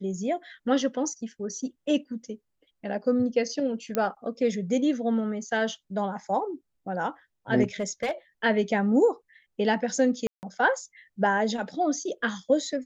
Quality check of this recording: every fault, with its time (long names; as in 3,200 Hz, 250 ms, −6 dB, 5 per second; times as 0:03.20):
0:03.95: click −12 dBFS
0:07.63–0:08.11: clipping −23 dBFS
0:10.27–0:10.43: drop-out 159 ms